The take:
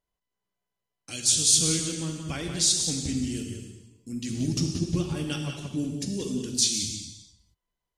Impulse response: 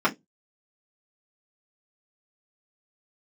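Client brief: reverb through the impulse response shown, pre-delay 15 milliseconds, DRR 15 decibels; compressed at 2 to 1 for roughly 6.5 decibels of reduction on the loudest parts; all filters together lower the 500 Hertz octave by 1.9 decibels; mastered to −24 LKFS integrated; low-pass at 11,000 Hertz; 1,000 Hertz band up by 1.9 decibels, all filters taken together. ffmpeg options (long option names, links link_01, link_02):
-filter_complex "[0:a]lowpass=11000,equalizer=frequency=500:width_type=o:gain=-3.5,equalizer=frequency=1000:width_type=o:gain=3.5,acompressor=threshold=-29dB:ratio=2,asplit=2[link_01][link_02];[1:a]atrim=start_sample=2205,adelay=15[link_03];[link_02][link_03]afir=irnorm=-1:irlink=0,volume=-31dB[link_04];[link_01][link_04]amix=inputs=2:normalize=0,volume=6.5dB"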